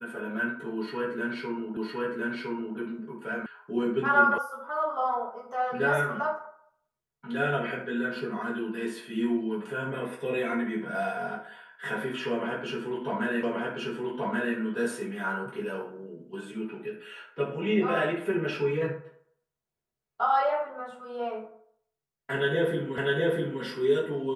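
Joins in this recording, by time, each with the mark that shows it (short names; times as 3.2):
1.77 repeat of the last 1.01 s
3.46 sound cut off
4.38 sound cut off
13.43 repeat of the last 1.13 s
22.98 repeat of the last 0.65 s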